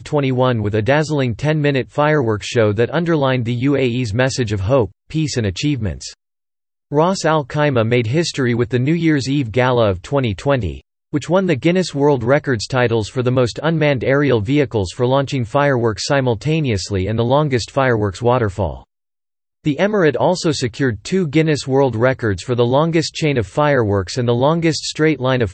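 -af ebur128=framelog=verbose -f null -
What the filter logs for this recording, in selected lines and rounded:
Integrated loudness:
  I:         -16.9 LUFS
  Threshold: -27.1 LUFS
Loudness range:
  LRA:         2.3 LU
  Threshold: -37.3 LUFS
  LRA low:   -18.7 LUFS
  LRA high:  -16.4 LUFS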